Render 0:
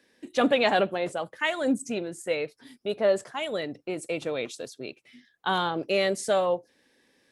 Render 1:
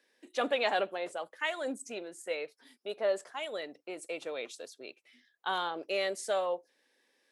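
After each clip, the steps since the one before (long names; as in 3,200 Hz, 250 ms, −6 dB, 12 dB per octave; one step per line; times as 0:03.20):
high-pass filter 410 Hz 12 dB per octave
level −6 dB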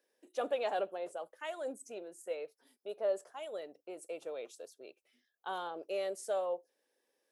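octave-band graphic EQ 125/250/1,000/2,000/4,000/8,000 Hz −7/−9/−5/−12/−10/−5 dB
level +1 dB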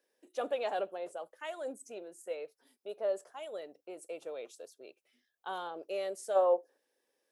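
gain on a spectral selection 0:06.36–0:06.78, 250–1,900 Hz +9 dB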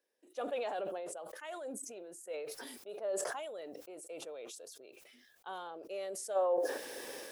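level that may fall only so fast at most 26 dB per second
level −5 dB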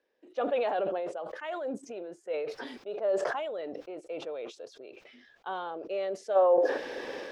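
high-frequency loss of the air 220 metres
level +9 dB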